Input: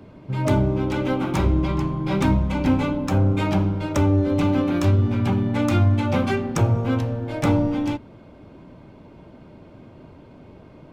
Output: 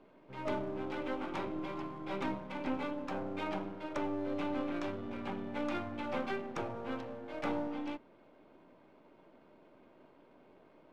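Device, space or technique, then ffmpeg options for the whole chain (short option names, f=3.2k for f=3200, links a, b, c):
crystal radio: -af "highpass=59,highpass=330,lowpass=3.5k,aeval=exprs='if(lt(val(0),0),0.447*val(0),val(0))':c=same,volume=-9dB"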